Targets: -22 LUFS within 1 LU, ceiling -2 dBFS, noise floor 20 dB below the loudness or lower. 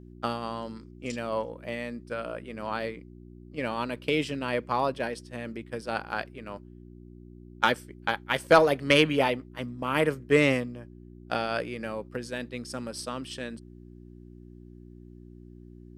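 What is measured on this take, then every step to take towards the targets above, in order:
hum 60 Hz; highest harmonic 360 Hz; hum level -46 dBFS; loudness -29.0 LUFS; peak level -7.0 dBFS; loudness target -22.0 LUFS
-> de-hum 60 Hz, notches 6; trim +7 dB; peak limiter -2 dBFS

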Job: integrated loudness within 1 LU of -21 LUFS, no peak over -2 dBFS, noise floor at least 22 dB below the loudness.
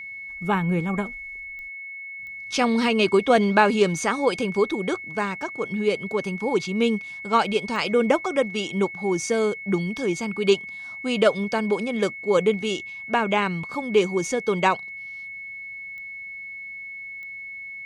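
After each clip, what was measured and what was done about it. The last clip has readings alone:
clicks found 5; steady tone 2.2 kHz; tone level -34 dBFS; loudness -23.5 LUFS; peak level -4.5 dBFS; loudness target -21.0 LUFS
-> de-click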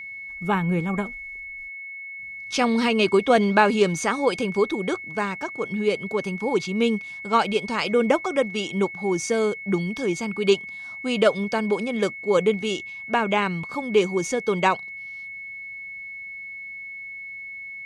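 clicks found 0; steady tone 2.2 kHz; tone level -34 dBFS
-> band-stop 2.2 kHz, Q 30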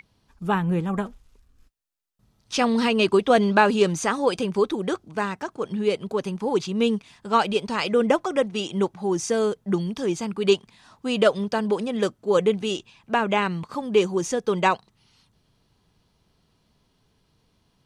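steady tone not found; loudness -23.5 LUFS; peak level -5.0 dBFS; loudness target -21.0 LUFS
-> trim +2.5 dB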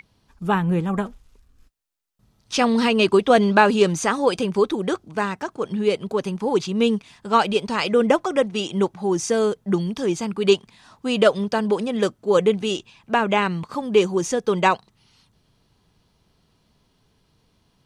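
loudness -21.0 LUFS; peak level -2.5 dBFS; noise floor -65 dBFS

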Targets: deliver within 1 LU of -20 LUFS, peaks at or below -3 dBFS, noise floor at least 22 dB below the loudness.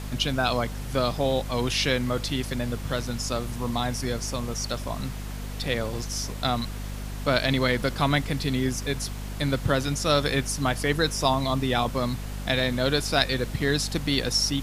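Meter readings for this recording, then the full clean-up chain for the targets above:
hum 50 Hz; highest harmonic 250 Hz; hum level -31 dBFS; noise floor -34 dBFS; noise floor target -49 dBFS; loudness -26.5 LUFS; peak level -5.0 dBFS; loudness target -20.0 LUFS
-> de-hum 50 Hz, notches 5; noise print and reduce 15 dB; trim +6.5 dB; peak limiter -3 dBFS

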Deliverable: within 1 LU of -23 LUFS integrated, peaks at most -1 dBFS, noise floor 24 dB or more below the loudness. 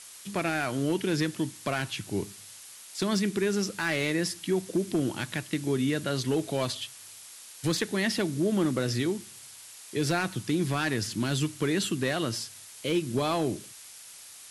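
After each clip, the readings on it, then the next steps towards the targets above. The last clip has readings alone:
clipped samples 0.4%; clipping level -19.0 dBFS; noise floor -48 dBFS; noise floor target -54 dBFS; loudness -29.5 LUFS; peak level -19.0 dBFS; loudness target -23.0 LUFS
-> clip repair -19 dBFS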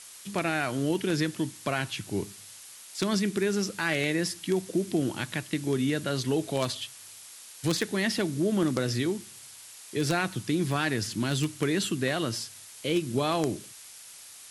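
clipped samples 0.0%; noise floor -48 dBFS; noise floor target -53 dBFS
-> noise print and reduce 6 dB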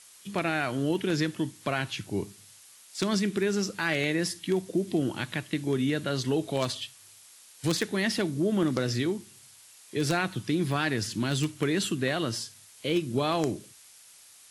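noise floor -54 dBFS; loudness -29.0 LUFS; peak level -10.0 dBFS; loudness target -23.0 LUFS
-> trim +6 dB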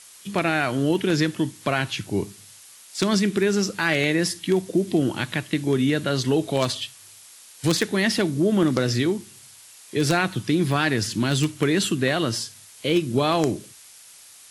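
loudness -23.0 LUFS; peak level -4.0 dBFS; noise floor -48 dBFS

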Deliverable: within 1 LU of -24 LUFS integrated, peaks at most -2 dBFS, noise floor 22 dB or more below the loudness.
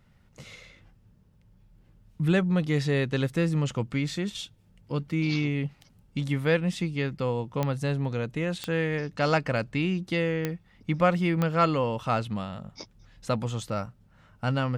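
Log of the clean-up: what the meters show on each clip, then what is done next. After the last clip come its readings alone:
clicks found 4; loudness -28.0 LUFS; peak level -10.5 dBFS; loudness target -24.0 LUFS
-> de-click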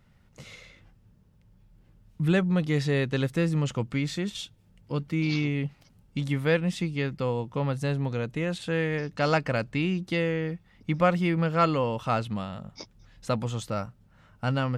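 clicks found 0; loudness -28.0 LUFS; peak level -10.5 dBFS; loudness target -24.0 LUFS
-> trim +4 dB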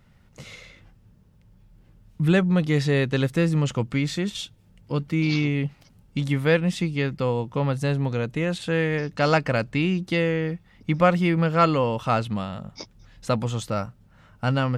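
loudness -24.0 LUFS; peak level -6.5 dBFS; noise floor -56 dBFS

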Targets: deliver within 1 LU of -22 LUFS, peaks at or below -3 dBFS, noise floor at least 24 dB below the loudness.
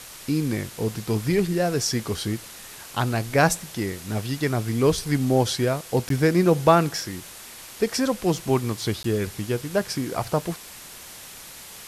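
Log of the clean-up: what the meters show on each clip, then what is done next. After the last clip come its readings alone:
dropouts 2; longest dropout 13 ms; noise floor -42 dBFS; noise floor target -48 dBFS; loudness -24.0 LUFS; peak level -3.0 dBFS; loudness target -22.0 LUFS
-> interpolate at 6.09/9.03 s, 13 ms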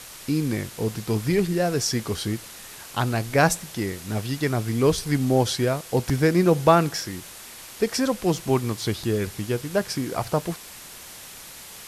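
dropouts 0; noise floor -42 dBFS; noise floor target -48 dBFS
-> noise reduction 6 dB, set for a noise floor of -42 dBFS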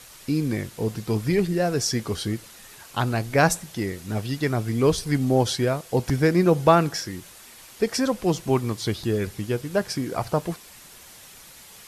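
noise floor -47 dBFS; noise floor target -48 dBFS
-> noise reduction 6 dB, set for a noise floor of -47 dBFS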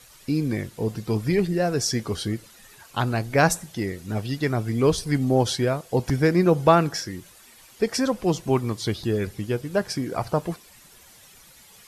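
noise floor -51 dBFS; loudness -24.0 LUFS; peak level -3.0 dBFS; loudness target -22.0 LUFS
-> trim +2 dB; peak limiter -3 dBFS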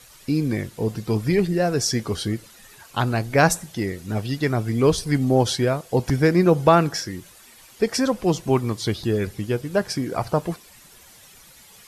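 loudness -22.0 LUFS; peak level -3.0 dBFS; noise floor -49 dBFS

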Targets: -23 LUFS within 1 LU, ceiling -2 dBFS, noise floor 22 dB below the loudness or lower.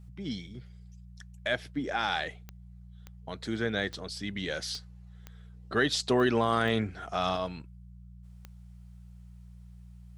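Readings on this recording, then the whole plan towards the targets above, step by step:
clicks found 8; hum 60 Hz; highest harmonic 180 Hz; hum level -46 dBFS; loudness -31.0 LUFS; peak level -12.5 dBFS; loudness target -23.0 LUFS
-> de-click; de-hum 60 Hz, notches 3; trim +8 dB

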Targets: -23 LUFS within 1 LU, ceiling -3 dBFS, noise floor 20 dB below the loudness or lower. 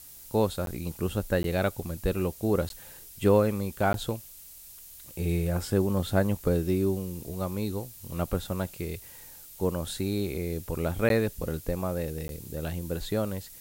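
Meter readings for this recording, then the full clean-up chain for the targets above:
dropouts 6; longest dropout 12 ms; noise floor -48 dBFS; noise floor target -50 dBFS; loudness -29.5 LUFS; peak level -10.5 dBFS; loudness target -23.0 LUFS
-> interpolate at 0.66/1.43/2.69/3.93/11.09/12.28 s, 12 ms; noise reduction 6 dB, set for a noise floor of -48 dBFS; trim +6.5 dB

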